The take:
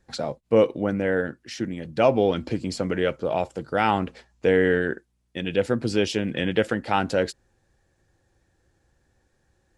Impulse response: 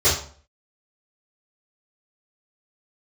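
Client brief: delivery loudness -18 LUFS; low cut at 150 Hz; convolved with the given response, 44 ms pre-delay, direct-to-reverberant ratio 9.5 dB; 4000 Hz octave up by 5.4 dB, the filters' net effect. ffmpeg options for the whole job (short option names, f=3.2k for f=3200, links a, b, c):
-filter_complex "[0:a]highpass=150,equalizer=f=4k:t=o:g=7.5,asplit=2[a][b];[1:a]atrim=start_sample=2205,adelay=44[c];[b][c]afir=irnorm=-1:irlink=0,volume=-28dB[d];[a][d]amix=inputs=2:normalize=0,volume=5.5dB"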